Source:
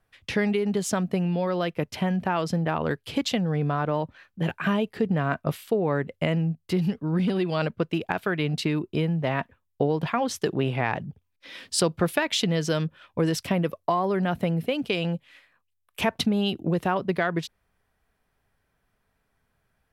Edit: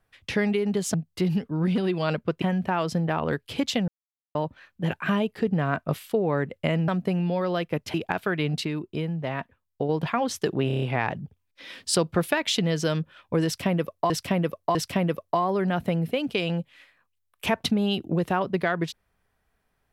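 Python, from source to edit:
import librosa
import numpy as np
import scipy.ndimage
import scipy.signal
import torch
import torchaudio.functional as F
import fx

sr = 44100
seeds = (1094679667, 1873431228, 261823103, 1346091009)

y = fx.edit(x, sr, fx.swap(start_s=0.94, length_s=1.06, other_s=6.46, other_length_s=1.48),
    fx.silence(start_s=3.46, length_s=0.47),
    fx.clip_gain(start_s=8.65, length_s=1.24, db=-4.0),
    fx.stutter(start_s=10.67, slice_s=0.03, count=6),
    fx.repeat(start_s=13.3, length_s=0.65, count=3), tone=tone)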